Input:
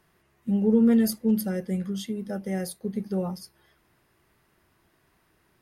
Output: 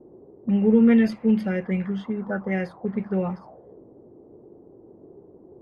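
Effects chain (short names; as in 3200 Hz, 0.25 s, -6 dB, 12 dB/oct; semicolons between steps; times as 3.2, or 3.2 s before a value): band noise 80–980 Hz -56 dBFS; envelope low-pass 350–2400 Hz up, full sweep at -25.5 dBFS; gain +3 dB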